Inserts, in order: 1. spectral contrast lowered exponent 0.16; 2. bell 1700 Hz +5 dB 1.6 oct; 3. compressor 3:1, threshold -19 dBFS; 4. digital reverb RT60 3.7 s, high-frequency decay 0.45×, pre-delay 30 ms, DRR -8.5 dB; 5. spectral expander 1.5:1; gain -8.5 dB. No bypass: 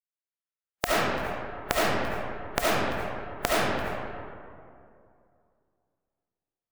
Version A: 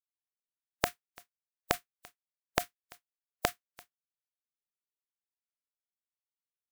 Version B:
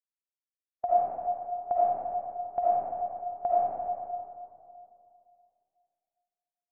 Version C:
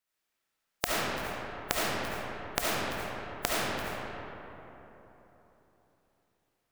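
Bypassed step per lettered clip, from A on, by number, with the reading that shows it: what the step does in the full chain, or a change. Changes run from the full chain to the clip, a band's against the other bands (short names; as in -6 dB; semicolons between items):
4, momentary loudness spread change -8 LU; 1, crest factor change -11.5 dB; 5, 8 kHz band +5.5 dB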